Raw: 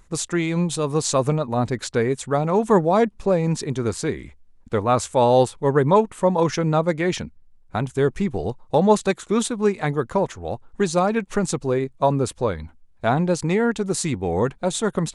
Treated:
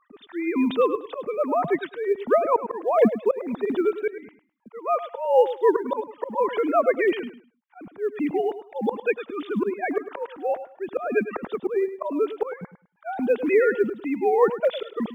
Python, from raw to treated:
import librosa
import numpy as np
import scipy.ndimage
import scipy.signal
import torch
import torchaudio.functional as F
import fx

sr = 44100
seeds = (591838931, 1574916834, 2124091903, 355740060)

p1 = fx.sine_speech(x, sr)
p2 = fx.auto_swell(p1, sr, attack_ms=352.0)
p3 = fx.rider(p2, sr, range_db=3, speed_s=2.0)
p4 = fx.quant_float(p3, sr, bits=6)
p5 = p4 + fx.echo_feedback(p4, sr, ms=104, feedback_pct=22, wet_db=-12.5, dry=0)
y = p5 * 10.0 ** (2.5 / 20.0)